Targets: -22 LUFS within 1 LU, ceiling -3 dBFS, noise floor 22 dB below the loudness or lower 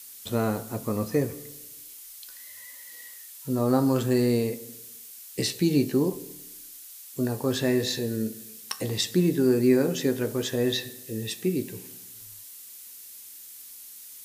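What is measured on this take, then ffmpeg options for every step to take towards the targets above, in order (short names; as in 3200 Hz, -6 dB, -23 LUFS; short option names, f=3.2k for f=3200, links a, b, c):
noise floor -45 dBFS; noise floor target -49 dBFS; loudness -26.5 LUFS; peak -9.0 dBFS; loudness target -22.0 LUFS
-> -af "afftdn=nr=6:nf=-45"
-af "volume=4.5dB"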